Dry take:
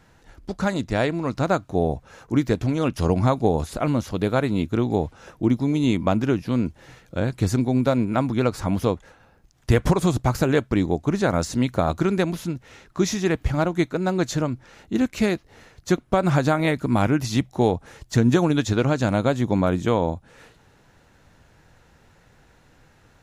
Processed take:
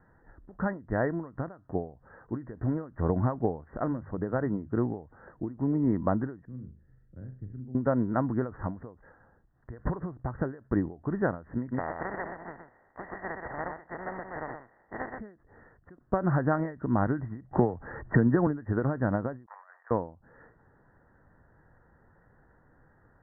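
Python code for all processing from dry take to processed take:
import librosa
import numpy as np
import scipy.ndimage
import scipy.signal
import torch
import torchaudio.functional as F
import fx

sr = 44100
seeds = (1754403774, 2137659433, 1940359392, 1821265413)

y = fx.chain(x, sr, fx.hum_notches(base_hz=50, count=3),
    fx.clip_hard(threshold_db=-12.5),
    fx.air_absorb(metres=240.0), at=(3.83, 4.78))
y = fx.chain(y, sr, fx.tone_stack(knobs='10-0-1'),
    fx.room_flutter(wall_m=6.7, rt60_s=0.35),
    fx.band_squash(depth_pct=40), at=(6.45, 7.75))
y = fx.spec_flatten(y, sr, power=0.26, at=(11.71, 15.18), fade=0.02)
y = fx.cheby_ripple(y, sr, hz=2800.0, ripple_db=9, at=(11.71, 15.18), fade=0.02)
y = fx.echo_single(y, sr, ms=124, db=-5.5, at=(11.71, 15.18), fade=0.02)
y = fx.chain(y, sr, fx.law_mismatch(coded='mu'),
    fx.band_squash(depth_pct=100), at=(17.51, 18.47))
y = fx.chain(y, sr, fx.halfwave_gain(db=-12.0),
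    fx.bessel_highpass(hz=1400.0, order=8),
    fx.over_compress(threshold_db=-41.0, ratio=-0.5), at=(19.46, 19.91))
y = scipy.signal.sosfilt(scipy.signal.cheby1(8, 1.0, 1900.0, 'lowpass', fs=sr, output='sos'), y)
y = fx.end_taper(y, sr, db_per_s=150.0)
y = y * 10.0 ** (-5.0 / 20.0)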